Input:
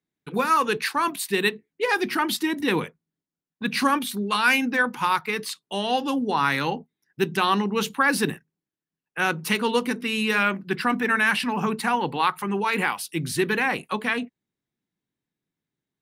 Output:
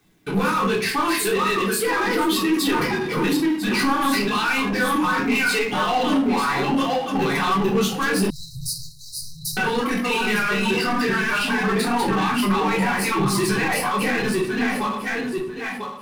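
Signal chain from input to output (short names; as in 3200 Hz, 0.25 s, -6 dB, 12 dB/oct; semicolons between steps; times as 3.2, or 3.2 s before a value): regenerating reverse delay 0.496 s, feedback 43%, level -1.5 dB; reverb removal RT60 2 s; in parallel at -2.5 dB: negative-ratio compressor -28 dBFS; on the sum: limiter -14.5 dBFS, peak gain reduction 10.5 dB; soft clip -18.5 dBFS, distortion -17 dB; flange 0.7 Hz, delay 0.7 ms, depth 10 ms, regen -28%; shoebox room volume 410 m³, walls furnished, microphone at 3.6 m; power-law curve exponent 0.7; 8.3–9.57 brick-wall FIR band-stop 150–3800 Hz; gain -2 dB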